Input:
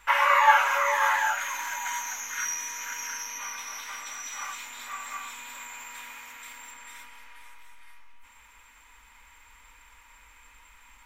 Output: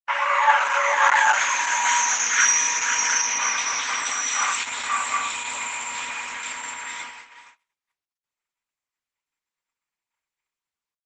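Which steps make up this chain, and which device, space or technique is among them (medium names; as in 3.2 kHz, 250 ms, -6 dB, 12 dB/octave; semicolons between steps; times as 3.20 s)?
5.01–6.11 s: dynamic bell 1.6 kHz, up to -5 dB, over -56 dBFS, Q 3.7; video call (high-pass 140 Hz 12 dB/octave; level rider gain up to 15 dB; gate -34 dBFS, range -56 dB; trim -1 dB; Opus 12 kbps 48 kHz)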